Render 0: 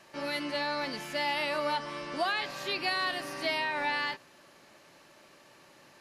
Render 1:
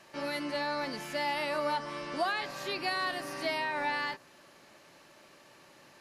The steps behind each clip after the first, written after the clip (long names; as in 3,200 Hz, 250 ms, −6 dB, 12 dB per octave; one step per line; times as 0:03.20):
dynamic equaliser 3,100 Hz, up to −5 dB, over −44 dBFS, Q 1.1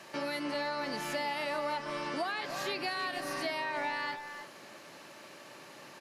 high-pass filter 120 Hz
downward compressor 3 to 1, threshold −41 dBFS, peak gain reduction 11.5 dB
far-end echo of a speakerphone 310 ms, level −7 dB
level +6 dB